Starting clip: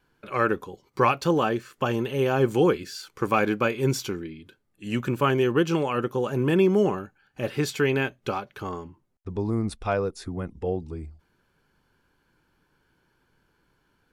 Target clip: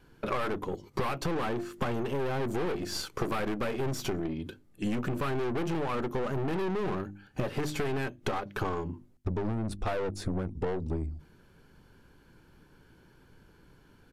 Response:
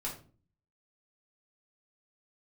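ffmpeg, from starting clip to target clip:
-filter_complex "[0:a]bandreject=f=50:t=h:w=6,bandreject=f=100:t=h:w=6,bandreject=f=150:t=h:w=6,bandreject=f=200:t=h:w=6,bandreject=f=250:t=h:w=6,bandreject=f=300:t=h:w=6,bandreject=f=350:t=h:w=6,aeval=exprs='(tanh(35.5*val(0)+0.55)-tanh(0.55))/35.5':c=same,asplit=2[a][b];[b]adynamicsmooth=sensitivity=7:basefreq=610,volume=2dB[c];[a][c]amix=inputs=2:normalize=0,aresample=32000,aresample=44100,acompressor=threshold=-36dB:ratio=16,volume=8.5dB"

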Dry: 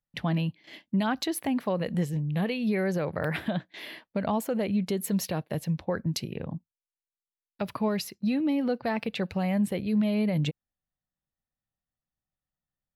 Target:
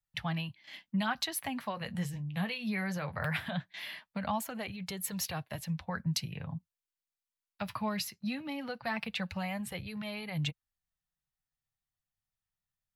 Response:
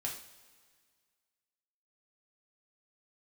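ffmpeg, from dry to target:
-filter_complex "[0:a]flanger=delay=2.2:depth=7.7:regen=-43:speed=0.2:shape=sinusoidal,acrossover=split=190|690|2600[a][b][c][d];[b]acrusher=bits=3:mix=0:aa=0.000001[e];[a][e][c][d]amix=inputs=4:normalize=0,volume=3.5dB"

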